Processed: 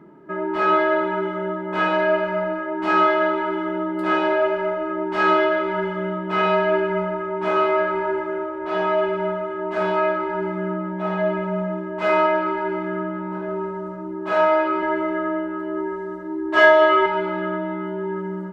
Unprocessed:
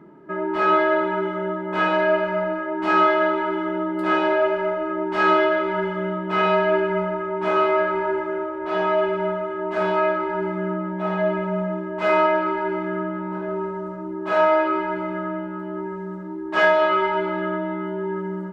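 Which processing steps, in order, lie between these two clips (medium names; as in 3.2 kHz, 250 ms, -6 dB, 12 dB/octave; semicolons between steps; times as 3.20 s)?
14.82–17.06 s: comb 3 ms, depth 80%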